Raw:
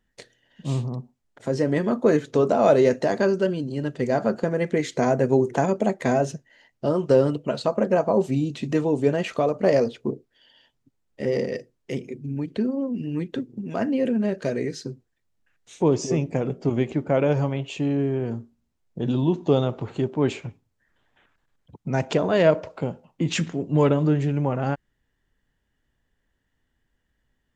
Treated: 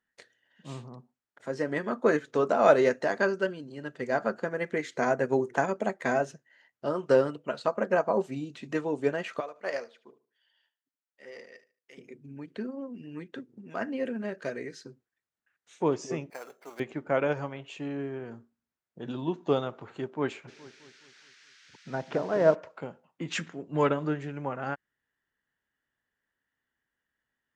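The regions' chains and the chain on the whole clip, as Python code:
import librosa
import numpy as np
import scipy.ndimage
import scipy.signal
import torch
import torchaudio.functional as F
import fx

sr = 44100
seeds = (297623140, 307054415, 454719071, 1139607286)

y = fx.chain(x, sr, fx.highpass(hz=1000.0, slope=6),
    fx.echo_feedback(ms=74, feedback_pct=27, wet_db=-15),
    fx.upward_expand(threshold_db=-35.0, expansion=1.5), at=(9.4, 11.98))
y = fx.chain(y, sr, fx.highpass(hz=660.0, slope=12),
    fx.sample_hold(seeds[0], rate_hz=6800.0, jitter_pct=0), at=(16.3, 16.8))
y = fx.env_lowpass_down(y, sr, base_hz=950.0, full_db=-20.0, at=(20.47, 22.54), fade=0.02)
y = fx.dmg_noise_band(y, sr, seeds[1], low_hz=1500.0, high_hz=6200.0, level_db=-50.0, at=(20.47, 22.54), fade=0.02)
y = fx.echo_wet_lowpass(y, sr, ms=210, feedback_pct=47, hz=1900.0, wet_db=-10.5, at=(20.47, 22.54), fade=0.02)
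y = fx.highpass(y, sr, hz=250.0, slope=6)
y = fx.peak_eq(y, sr, hz=1500.0, db=8.5, octaves=1.2)
y = fx.upward_expand(y, sr, threshold_db=-29.0, expansion=1.5)
y = y * librosa.db_to_amplitude(-2.5)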